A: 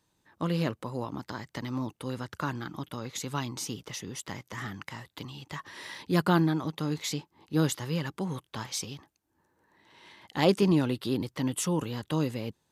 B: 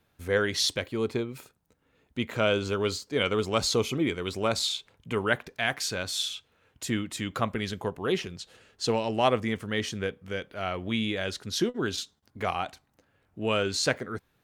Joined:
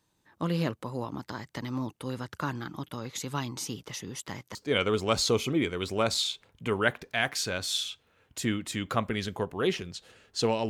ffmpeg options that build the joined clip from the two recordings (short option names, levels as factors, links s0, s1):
-filter_complex "[0:a]apad=whole_dur=10.69,atrim=end=10.69,atrim=end=4.552[s0];[1:a]atrim=start=2.998:end=9.14[s1];[s0][s1]acrossfade=d=0.004:c1=hsin:c2=hsin"